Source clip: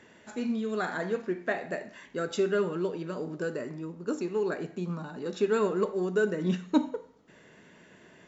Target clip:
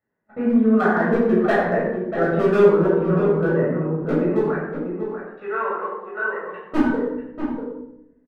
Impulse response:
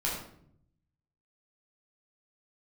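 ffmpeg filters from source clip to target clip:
-filter_complex "[0:a]asettb=1/sr,asplit=3[a][b][c];[a]atrim=end=4.394[d];[b]atrim=start=4.39:end=6.66,asetpts=PTS-STARTPTS,afade=t=in:d=0.004:c=qsin,afade=t=out:st=2.266:d=0.004:c=qsin,highpass=990[e];[c]atrim=start=6.656[f];[d][e]acrossfade=d=0.004:c1=hsin:c2=qsin[g];[g][f]acrossfade=d=0.004:c1=qsin:c2=hsin,agate=range=-34dB:threshold=-42dB:ratio=16:detection=peak,lowpass=f=1.8k:w=0.5412,lowpass=f=1.8k:w=1.3066,asoftclip=type=hard:threshold=-23.5dB,asplit=2[h][i];[i]adelay=641.4,volume=-7dB,highshelf=f=4k:g=-14.4[j];[h][j]amix=inputs=2:normalize=0[k];[1:a]atrim=start_sample=2205,asetrate=36162,aresample=44100[l];[k][l]afir=irnorm=-1:irlink=0,volume=4.5dB"

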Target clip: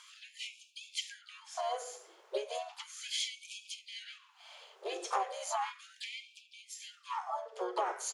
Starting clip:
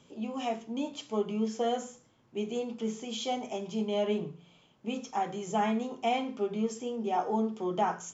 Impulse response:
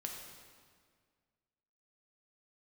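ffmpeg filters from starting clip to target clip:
-filter_complex "[0:a]asplit=4[a][b][c][d];[b]asetrate=29433,aresample=44100,atempo=1.49831,volume=-11dB[e];[c]asetrate=58866,aresample=44100,atempo=0.749154,volume=-8dB[f];[d]asetrate=66075,aresample=44100,atempo=0.66742,volume=-10dB[g];[a][e][f][g]amix=inputs=4:normalize=0,acompressor=threshold=-38dB:ratio=10,afftfilt=real='re*gte(b*sr/1024,340*pow(2300/340,0.5+0.5*sin(2*PI*0.35*pts/sr)))':imag='im*gte(b*sr/1024,340*pow(2300/340,0.5+0.5*sin(2*PI*0.35*pts/sr)))':win_size=1024:overlap=0.75,volume=8.5dB"

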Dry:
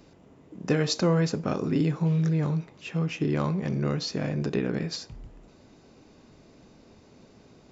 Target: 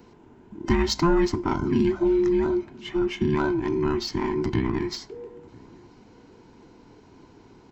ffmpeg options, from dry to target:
-filter_complex "[0:a]afftfilt=real='real(if(between(b,1,1008),(2*floor((b-1)/24)+1)*24-b,b),0)':imag='imag(if(between(b,1,1008),(2*floor((b-1)/24)+1)*24-b,b),0)*if(between(b,1,1008),-1,1)':win_size=2048:overlap=0.75,asplit=2[a][b];[b]adynamicsmooth=sensitivity=5:basefreq=4.3k,volume=-2dB[c];[a][c]amix=inputs=2:normalize=0,asplit=2[d][e];[e]adelay=991.3,volume=-25dB,highshelf=f=4k:g=-22.3[f];[d][f]amix=inputs=2:normalize=0,volume=-2dB"

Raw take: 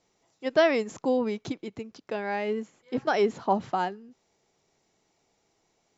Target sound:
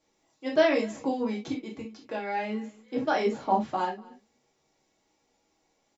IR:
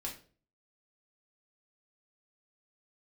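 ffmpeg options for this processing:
-filter_complex "[0:a]lowshelf=f=120:g=-5,aecho=1:1:241:0.0668[a];[1:a]atrim=start_sample=2205,atrim=end_sample=3528[b];[a][b]afir=irnorm=-1:irlink=0"

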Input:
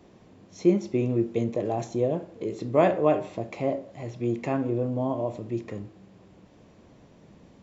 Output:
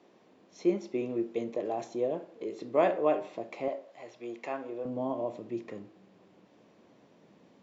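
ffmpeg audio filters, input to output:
-af "asetnsamples=n=441:p=0,asendcmd='3.68 highpass f 540;4.85 highpass f 220',highpass=300,lowpass=6.1k,volume=-4dB"

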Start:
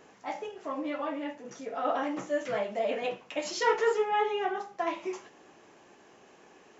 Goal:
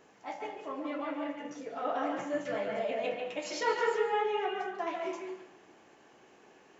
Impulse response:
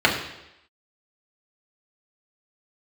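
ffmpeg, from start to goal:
-filter_complex "[0:a]asplit=2[a][b];[1:a]atrim=start_sample=2205,adelay=141[c];[b][c]afir=irnorm=-1:irlink=0,volume=-22dB[d];[a][d]amix=inputs=2:normalize=0,volume=-4.5dB"

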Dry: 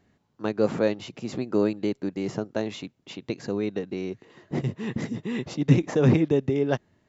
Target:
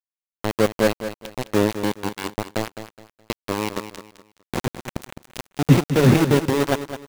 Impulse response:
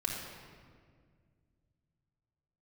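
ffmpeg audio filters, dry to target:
-af "aeval=exprs='val(0)*gte(abs(val(0)),0.0841)':c=same,aecho=1:1:210|420|630:0.282|0.0817|0.0237,volume=4.5dB"

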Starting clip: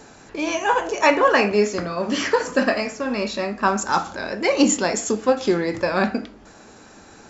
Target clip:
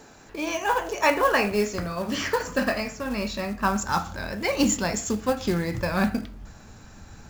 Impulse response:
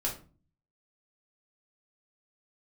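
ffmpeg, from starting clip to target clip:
-af "acrusher=bits=5:mode=log:mix=0:aa=0.000001,asubboost=boost=9:cutoff=120,volume=-4dB"

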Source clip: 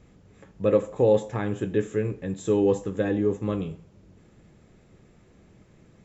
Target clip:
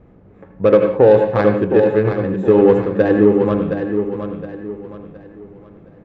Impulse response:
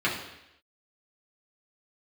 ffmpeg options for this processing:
-filter_complex "[0:a]lowshelf=f=420:g=-10.5,adynamicsmooth=sensitivity=1:basefreq=900,aecho=1:1:717|1434|2151|2868:0.398|0.139|0.0488|0.0171,asplit=2[a][b];[1:a]atrim=start_sample=2205,atrim=end_sample=6174,adelay=77[c];[b][c]afir=irnorm=-1:irlink=0,volume=-19dB[d];[a][d]amix=inputs=2:normalize=0,alimiter=level_in=17.5dB:limit=-1dB:release=50:level=0:latency=1,volume=-1dB"

